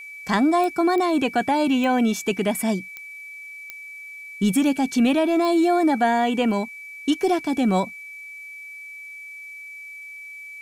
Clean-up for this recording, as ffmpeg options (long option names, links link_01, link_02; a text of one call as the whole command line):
ffmpeg -i in.wav -af "adeclick=threshold=4,bandreject=frequency=2300:width=30,agate=range=-21dB:threshold=-31dB" out.wav